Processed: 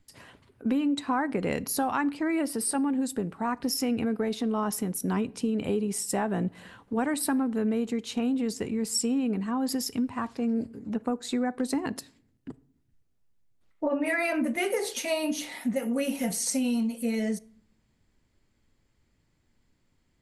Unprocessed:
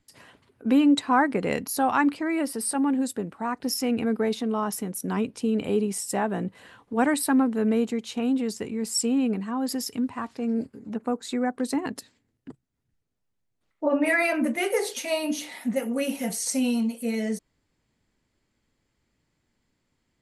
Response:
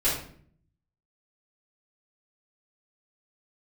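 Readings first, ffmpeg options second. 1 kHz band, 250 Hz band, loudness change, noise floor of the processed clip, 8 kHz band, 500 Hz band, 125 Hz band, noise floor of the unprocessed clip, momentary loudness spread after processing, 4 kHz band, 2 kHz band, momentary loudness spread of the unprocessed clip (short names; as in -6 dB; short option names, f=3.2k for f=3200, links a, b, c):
-4.5 dB, -2.5 dB, -3.0 dB, -71 dBFS, -1.0 dB, -3.0 dB, 0.0 dB, -76 dBFS, 5 LU, -2.0 dB, -4.5 dB, 9 LU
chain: -filter_complex "[0:a]lowshelf=f=110:g=8.5,acompressor=threshold=-24dB:ratio=6,asplit=2[a][b];[1:a]atrim=start_sample=2205[c];[b][c]afir=irnorm=-1:irlink=0,volume=-30.5dB[d];[a][d]amix=inputs=2:normalize=0"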